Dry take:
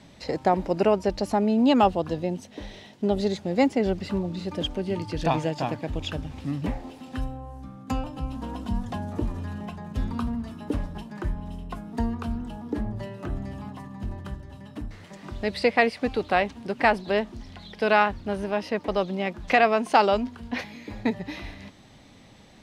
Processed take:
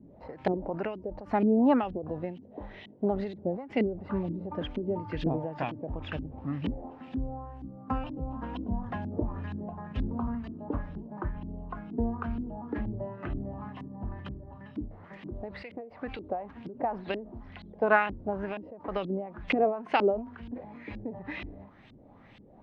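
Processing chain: LFO low-pass saw up 2.1 Hz 280–3200 Hz; ending taper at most 110 dB/s; gain -4 dB

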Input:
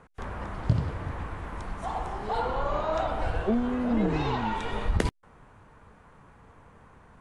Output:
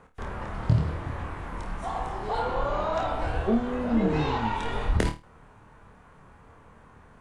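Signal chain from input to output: flutter echo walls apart 4.5 m, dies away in 0.27 s

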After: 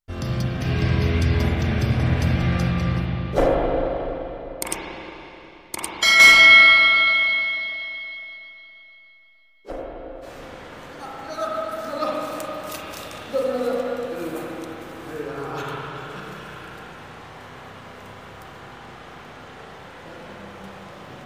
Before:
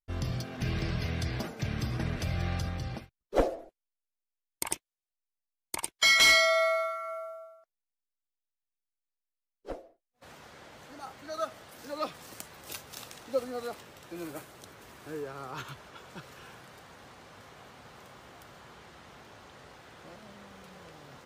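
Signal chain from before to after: 9.75–10.45 doubler 15 ms -3 dB; spring tank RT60 3.5 s, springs 31/36/40 ms, chirp 75 ms, DRR -5.5 dB; gain +4.5 dB

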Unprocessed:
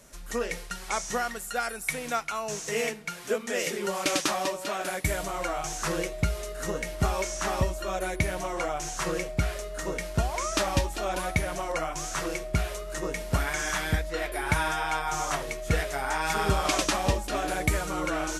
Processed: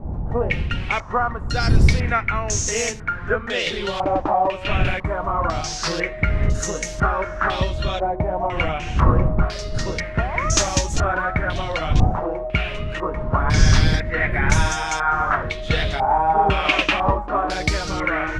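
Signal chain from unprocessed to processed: wind noise 98 Hz -27 dBFS; stepped low-pass 2 Hz 820–6500 Hz; gain +4 dB

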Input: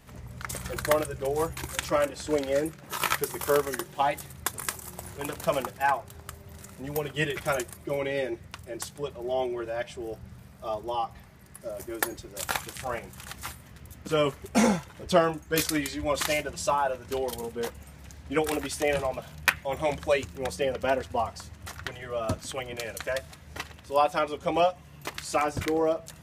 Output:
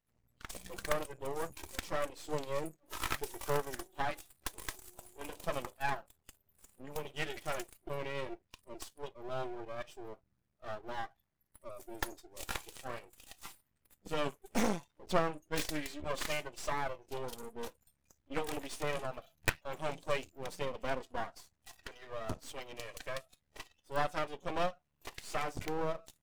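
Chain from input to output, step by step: tracing distortion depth 0.14 ms; spectral noise reduction 23 dB; half-wave rectifier; gain -6 dB

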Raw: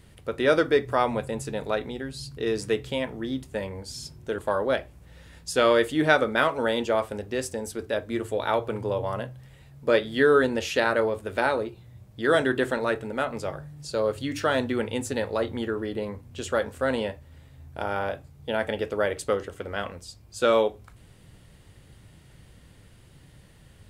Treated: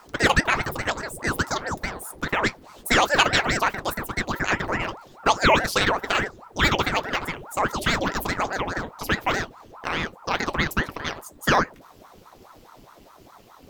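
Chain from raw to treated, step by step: speed glide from 196% -> 153%; ring modulator with a swept carrier 640 Hz, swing 85%, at 4.8 Hz; gain +5 dB

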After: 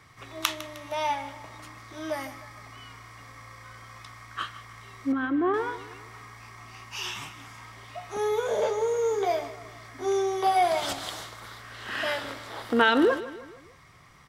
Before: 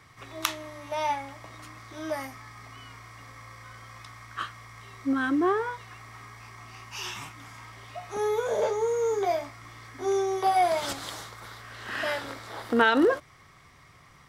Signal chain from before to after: 5.12–5.54 air absorption 440 m; on a send: feedback echo 0.154 s, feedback 48%, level -15.5 dB; on the sum: dynamic EQ 3100 Hz, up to +4 dB, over -52 dBFS, Q 2.4

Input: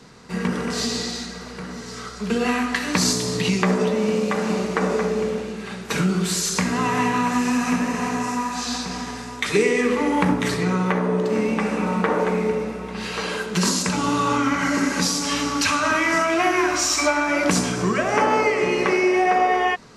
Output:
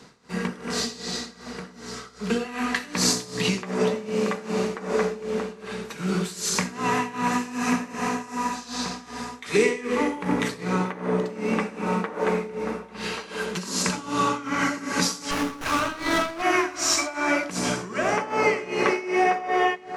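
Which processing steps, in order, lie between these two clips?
low shelf 130 Hz -7 dB; split-band echo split 1900 Hz, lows 0.63 s, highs 87 ms, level -13 dB; tremolo 2.6 Hz, depth 85%; 15.31–16.42 running maximum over 9 samples

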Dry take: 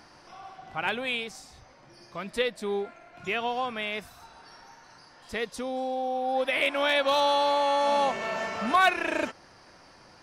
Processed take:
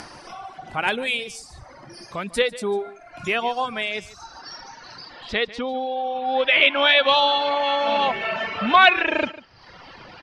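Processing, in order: high shelf 7700 Hz -5 dB; in parallel at -0.5 dB: upward compressor, threshold -33 dBFS; on the sum: low-pass sweep 10000 Hz -> 3200 Hz, 3.4–5.63; reverb removal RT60 1.3 s; on a send: echo 0.147 s -18 dB; on the sum: gain +1 dB

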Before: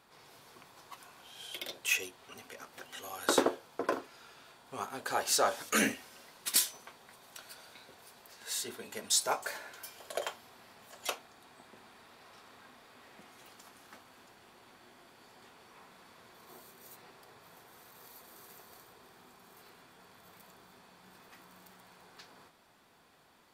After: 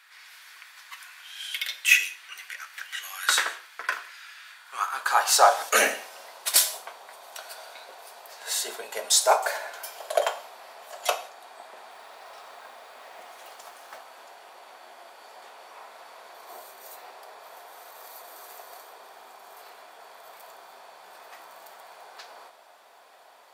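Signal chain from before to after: high-pass sweep 1800 Hz -> 640 Hz, 4.48–5.67; 11.9–13.98 modulation noise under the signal 21 dB; non-linear reverb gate 0.21 s falling, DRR 10 dB; gain +7.5 dB

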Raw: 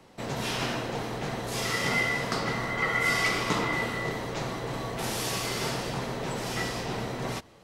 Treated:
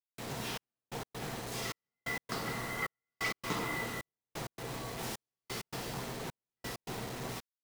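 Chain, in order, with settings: notch 580 Hz, Q 12; requantised 6-bit, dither none; step gate "xxxxx...x." 131 bpm -60 dB; gain -8 dB

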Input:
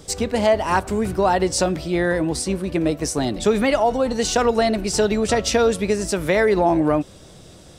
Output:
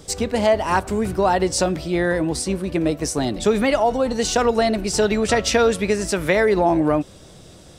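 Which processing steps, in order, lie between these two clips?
5.02–6.33 bell 1900 Hz +4 dB 1.6 oct

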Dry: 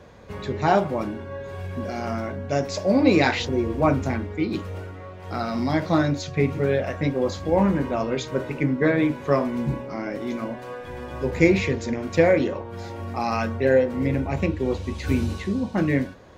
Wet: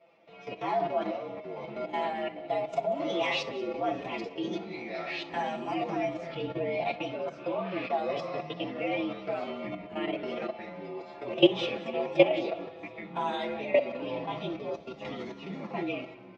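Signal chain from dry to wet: inharmonic rescaling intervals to 115%; level quantiser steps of 16 dB; 6.4–6.8 tilt -2 dB/oct; echoes that change speed 96 ms, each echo -7 st, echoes 3, each echo -6 dB; speaker cabinet 310–4600 Hz, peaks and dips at 690 Hz +6 dB, 1500 Hz -7 dB, 2400 Hz +8 dB; comb 5.9 ms, depth 56%; on a send: multi-head echo 62 ms, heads first and third, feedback 43%, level -19 dB

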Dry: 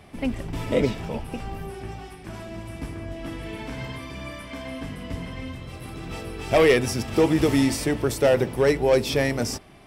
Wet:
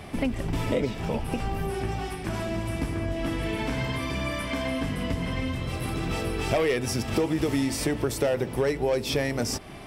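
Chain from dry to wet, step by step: compressor 4:1, threshold -33 dBFS, peak gain reduction 16 dB; gain +8 dB

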